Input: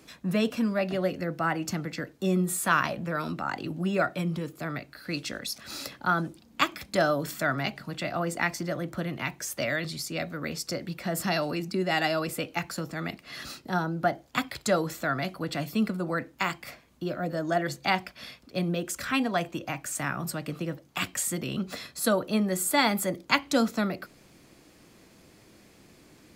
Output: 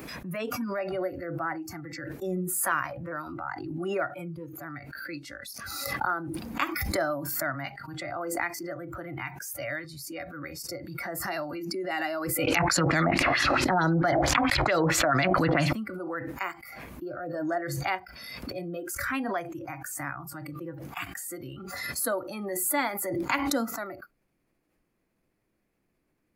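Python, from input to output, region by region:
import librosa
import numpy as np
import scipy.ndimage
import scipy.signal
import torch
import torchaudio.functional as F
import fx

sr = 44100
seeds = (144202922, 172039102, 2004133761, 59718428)

y = fx.chain(x, sr, fx.high_shelf(hz=2500.0, db=9.0),
    fx.filter_lfo_lowpass(shape='sine', hz=4.5, low_hz=680.0, high_hz=7400.0, q=2.4),
    fx.env_flatten(amount_pct=100), at=(12.47, 15.73))
y = fx.band_shelf(y, sr, hz=5100.0, db=-8.5, octaves=1.7)
y = fx.noise_reduce_blind(y, sr, reduce_db=17)
y = fx.pre_swell(y, sr, db_per_s=29.0)
y = y * 10.0 ** (-4.0 / 20.0)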